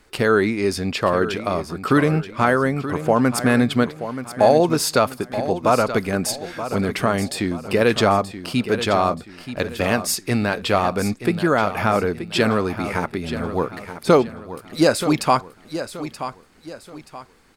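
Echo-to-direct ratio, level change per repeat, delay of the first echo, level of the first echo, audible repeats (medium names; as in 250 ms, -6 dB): -11.0 dB, -9.0 dB, 928 ms, -11.5 dB, 3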